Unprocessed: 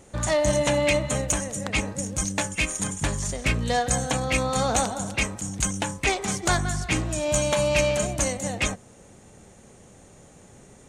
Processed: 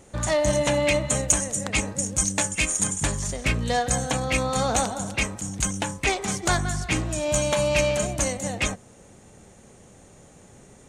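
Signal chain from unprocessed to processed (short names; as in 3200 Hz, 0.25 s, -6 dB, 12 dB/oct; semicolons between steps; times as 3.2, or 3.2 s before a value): 1.02–3.12 dynamic EQ 7900 Hz, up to +7 dB, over -41 dBFS, Q 1.2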